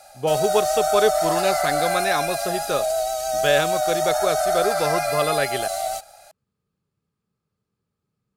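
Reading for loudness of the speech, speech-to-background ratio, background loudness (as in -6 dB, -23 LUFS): -24.5 LUFS, -1.5 dB, -23.0 LUFS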